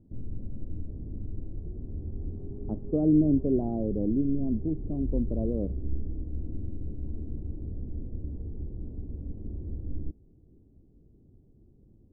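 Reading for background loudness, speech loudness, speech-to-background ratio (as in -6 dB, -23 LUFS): -39.0 LUFS, -28.0 LUFS, 11.0 dB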